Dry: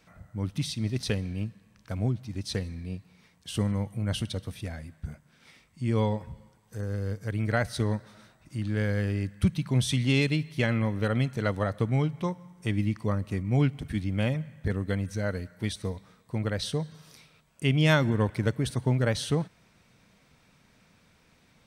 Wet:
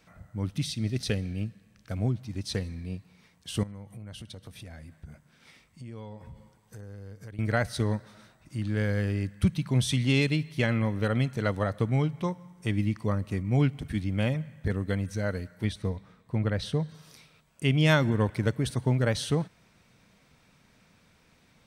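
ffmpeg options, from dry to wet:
-filter_complex "[0:a]asettb=1/sr,asplit=3[a][b][c];[a]atrim=end=0.544[d];[b]atrim=start=0.54:end=1.97,asetpts=PTS-STARTPTS,afade=t=in:d=0.004:c=qsin,afade=t=out:st=1.426:d=0.004:c=qsin,equalizer=f=990:t=o:w=0.32:g=-9.5[e];[c]atrim=start=1.966[f];[d][e]acrossfade=d=0.004:c1=hsin:c2=qsin[g];[g][f]acrossfade=d=0.004:c1=qsin:c2=hsin,asettb=1/sr,asplit=3[h][i][j];[h]atrim=end=3.634[k];[i]atrim=start=3.63:end=7.39,asetpts=PTS-STARTPTS,afade=t=in:d=0.004:c=qsin,afade=t=out:st=3.756:d=0.004:c=qsin,acompressor=threshold=-41dB:ratio=4:attack=3.2:release=140:knee=1:detection=peak[l];[j]atrim=start=7.386[m];[k][l]acrossfade=d=0.004:c1=hsin:c2=qsin[n];[n][m]acrossfade=d=0.004:c1=qsin:c2=hsin,asettb=1/sr,asplit=3[o][p][q];[o]atrim=end=15.644[r];[p]atrim=start=15.64:end=16.89,asetpts=PTS-STARTPTS,afade=t=in:d=0.004:c=qsin,afade=t=out:st=1.246:d=0.004:c=qsin,bass=f=250:g=3,treble=f=4k:g=-8[s];[q]atrim=start=16.886[t];[r][s]acrossfade=d=0.004:c1=hsin:c2=qsin[u];[u][t]acrossfade=d=0.004:c1=qsin:c2=hsin"

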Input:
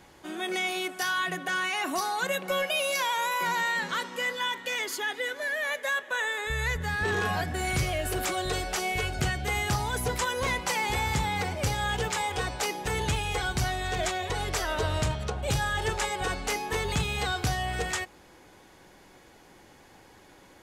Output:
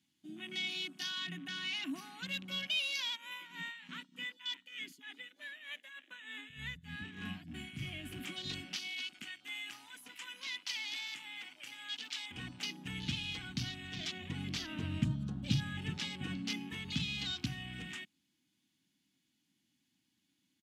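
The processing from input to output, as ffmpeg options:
-filter_complex "[0:a]asplit=3[a][b][c];[a]afade=t=out:st=3.15:d=0.02[d];[b]tremolo=f=3.3:d=0.7,afade=t=in:st=3.15:d=0.02,afade=t=out:st=7.88:d=0.02[e];[c]afade=t=in:st=7.88:d=0.02[f];[d][e][f]amix=inputs=3:normalize=0,asettb=1/sr,asplit=3[g][h][i];[g]atrim=end=8.764[j];[h]atrim=start=8.76:end=12.31,asetpts=PTS-STARTPTS,afade=t=in:d=0.004:c=qsin,afade=t=out:st=3.546:d=0.004:c=qsin,highpass=f=1.2k:p=1[k];[i]atrim=start=12.306[l];[j][k]acrossfade=d=0.004:c1=hsin:c2=qsin[m];[m][l]acrossfade=d=0.004:c1=qsin:c2=hsin,asettb=1/sr,asplit=3[n][o][p];[n]atrim=end=14.124[q];[o]atrim=start=14.12:end=16.7,asetpts=PTS-STARTPTS,afade=t=in:d=0.004:c=qsin,afade=t=out:st=2.576:d=0.004:c=qsin,equalizer=f=170:w=0.5:g=7.5[r];[p]atrim=start=16.696[s];[q][r]acrossfade=d=0.004:c1=hsin:c2=qsin[t];[t][s]acrossfade=d=0.004:c1=qsin:c2=hsin,highpass=210,afwtdn=0.0141,firequalizer=gain_entry='entry(270,0);entry(420,-29);entry(3000,-1);entry(5100,-4)':delay=0.05:min_phase=1"

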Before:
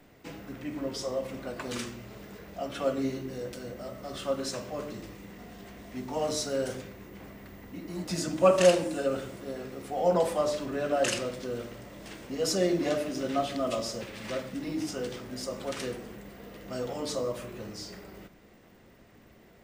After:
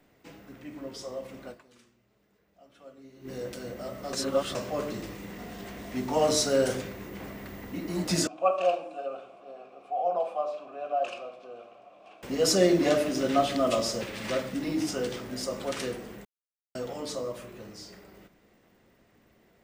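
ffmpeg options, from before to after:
-filter_complex "[0:a]asettb=1/sr,asplit=3[a][b][c];[a]atrim=end=8.274[d];[b]atrim=start=8.27:end=12.23,asetpts=PTS-STARTPTS,afade=t=in:d=0.004:c=qsin,afade=t=out:st=3.956:d=0.004:c=qsin,asplit=3[e][f][g];[e]bandpass=f=730:t=q:w=8,volume=0dB[h];[f]bandpass=f=1.09k:t=q:w=8,volume=-6dB[i];[g]bandpass=f=2.44k:t=q:w=8,volume=-9dB[j];[h][i][j]amix=inputs=3:normalize=0[k];[c]atrim=start=12.226[l];[d][k]acrossfade=d=0.004:c1=hsin:c2=qsin[m];[m][l]acrossfade=d=0.004:c1=qsin:c2=hsin,asplit=7[n][o][p][q][r][s][t];[n]atrim=end=1.99,asetpts=PTS-STARTPTS,afade=t=out:st=1.51:d=0.48:c=exp:silence=0.1[u];[o]atrim=start=1.99:end=2.81,asetpts=PTS-STARTPTS,volume=-20dB[v];[p]atrim=start=2.81:end=4.132,asetpts=PTS-STARTPTS,afade=t=in:d=0.48:c=exp:silence=0.1[w];[q]atrim=start=4.128:end=4.552,asetpts=PTS-STARTPTS,areverse[x];[r]atrim=start=4.548:end=16.25,asetpts=PTS-STARTPTS,afade=t=out:st=11.698:d=0.004:c=hsin[y];[s]atrim=start=16.25:end=16.75,asetpts=PTS-STARTPTS,volume=0[z];[t]atrim=start=16.75,asetpts=PTS-STARTPTS,afade=t=in:d=0.004:c=hsin[aa];[u][v][w]concat=n=3:v=0:a=1[ab];[ab][x]acrossfade=d=0.004:c1=hsin:c2=hsin[ac];[y][z][aa]concat=n=3:v=0:a=1[ad];[ac][ad]acrossfade=d=0.004:c1=hsin:c2=hsin,lowshelf=f=140:g=-3.5,dynaudnorm=f=250:g=31:m=12.5dB,volume=-5.5dB"

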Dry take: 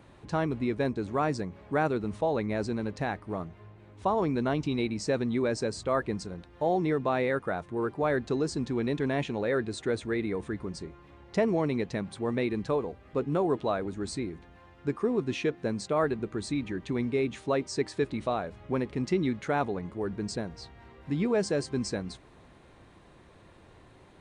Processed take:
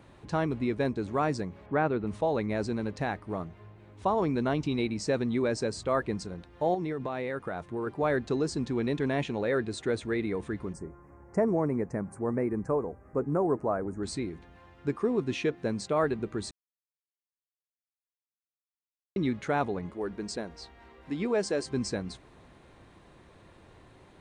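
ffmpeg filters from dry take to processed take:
-filter_complex "[0:a]asettb=1/sr,asplit=3[a][b][c];[a]atrim=end=1.664[d];[b]atrim=start=1.66:end=2.07,asetpts=PTS-STARTPTS,afade=t=in:d=0.004:c=qsin,afade=t=out:st=0.406:d=0.004:c=qsin,lowpass=2.9k[e];[c]atrim=start=2.066[f];[d][e]acrossfade=d=0.004:c1=hsin:c2=qsin[g];[g][f]acrossfade=d=0.004:c1=qsin:c2=hsin,asettb=1/sr,asplit=3[h][i][j];[h]atrim=end=6.744[k];[i]atrim=start=6.74:end=7.87,asetpts=PTS-STARTPTS,afade=t=in:d=0.004:c=qsin,afade=t=out:st=1.126:d=0.004:c=qsin,acompressor=threshold=-29dB:ratio=6:attack=3.2:release=140:knee=1:detection=peak[l];[j]atrim=start=7.866[m];[k][l]acrossfade=d=0.004:c1=hsin:c2=qsin[n];[n][m]acrossfade=d=0.004:c1=qsin:c2=hsin,asettb=1/sr,asplit=3[o][p][q];[o]atrim=end=10.734[r];[p]atrim=start=10.73:end=14.03,asetpts=PTS-STARTPTS,afade=t=in:d=0.004:c=qsin,afade=t=out:st=3.296:d=0.004:c=qsin,asuperstop=centerf=3500:order=4:qfactor=0.6[s];[q]atrim=start=14.026[t];[r][s]acrossfade=d=0.004:c1=hsin:c2=qsin[u];[u][t]acrossfade=d=0.004:c1=qsin:c2=hsin,asettb=1/sr,asplit=3[v][w][x];[v]atrim=end=19.914[y];[w]atrim=start=19.91:end=21.66,asetpts=PTS-STARTPTS,afade=t=in:d=0.004:c=qsin,afade=t=out:st=1.746:d=0.004:c=qsin,equalizer=f=120:w=1.5:g=-14.5[z];[x]atrim=start=21.656[aa];[y][z]acrossfade=d=0.004:c1=hsin:c2=qsin[ab];[ab][aa]acrossfade=d=0.004:c1=qsin:c2=hsin,asplit=3[ac][ad][ae];[ac]atrim=end=16.51,asetpts=PTS-STARTPTS,afade=t=out:st=16.506:d=0.004:c=hsin[af];[ad]atrim=start=16.51:end=19.16,asetpts=PTS-STARTPTS,volume=0[ag];[ae]atrim=start=19.16,asetpts=PTS-STARTPTS,afade=t=in:d=0.004:c=hsin[ah];[af][ag][ah]concat=n=3:v=0:a=1"

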